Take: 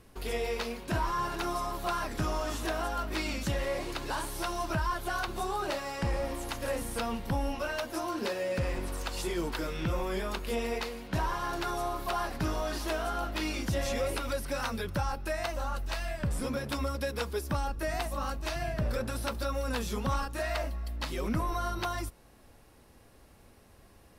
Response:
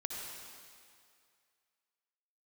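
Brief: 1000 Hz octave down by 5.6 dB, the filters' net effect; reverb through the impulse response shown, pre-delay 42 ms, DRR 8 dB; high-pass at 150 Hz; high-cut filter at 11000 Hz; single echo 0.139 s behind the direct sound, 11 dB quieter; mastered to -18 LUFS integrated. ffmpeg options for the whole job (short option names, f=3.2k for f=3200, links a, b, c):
-filter_complex "[0:a]highpass=150,lowpass=11k,equalizer=f=1k:t=o:g=-7.5,aecho=1:1:139:0.282,asplit=2[a][b];[1:a]atrim=start_sample=2205,adelay=42[c];[b][c]afir=irnorm=-1:irlink=0,volume=-9dB[d];[a][d]amix=inputs=2:normalize=0,volume=17.5dB"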